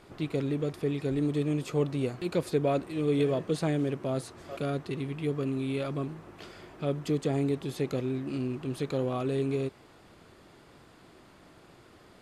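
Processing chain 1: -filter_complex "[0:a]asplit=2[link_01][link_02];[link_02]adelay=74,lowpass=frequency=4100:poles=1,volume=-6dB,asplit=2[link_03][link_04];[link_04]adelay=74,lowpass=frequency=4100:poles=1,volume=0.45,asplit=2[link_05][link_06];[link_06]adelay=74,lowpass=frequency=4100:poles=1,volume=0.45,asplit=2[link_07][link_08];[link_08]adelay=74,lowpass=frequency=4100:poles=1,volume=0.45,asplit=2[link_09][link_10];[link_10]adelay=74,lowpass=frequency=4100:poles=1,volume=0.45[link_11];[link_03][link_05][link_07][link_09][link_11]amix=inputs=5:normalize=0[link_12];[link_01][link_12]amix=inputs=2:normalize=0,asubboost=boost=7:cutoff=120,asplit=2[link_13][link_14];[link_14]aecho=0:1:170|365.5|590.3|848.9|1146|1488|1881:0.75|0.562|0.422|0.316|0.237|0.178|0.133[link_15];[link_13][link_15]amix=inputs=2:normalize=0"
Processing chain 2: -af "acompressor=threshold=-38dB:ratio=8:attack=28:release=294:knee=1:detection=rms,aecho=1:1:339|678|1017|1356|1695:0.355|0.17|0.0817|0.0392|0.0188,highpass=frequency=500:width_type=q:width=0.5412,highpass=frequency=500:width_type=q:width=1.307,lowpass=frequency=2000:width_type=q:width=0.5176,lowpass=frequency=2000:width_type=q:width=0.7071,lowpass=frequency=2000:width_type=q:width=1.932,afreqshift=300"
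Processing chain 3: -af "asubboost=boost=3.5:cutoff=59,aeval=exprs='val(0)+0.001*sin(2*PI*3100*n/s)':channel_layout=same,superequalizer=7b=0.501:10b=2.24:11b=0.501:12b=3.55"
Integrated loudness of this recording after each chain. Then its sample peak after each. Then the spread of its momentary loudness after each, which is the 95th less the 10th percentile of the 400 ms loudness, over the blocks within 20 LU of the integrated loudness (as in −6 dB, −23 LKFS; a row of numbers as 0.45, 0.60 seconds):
−25.0, −50.0, −32.0 LKFS; −11.0, −33.0, −16.0 dBFS; 11, 13, 22 LU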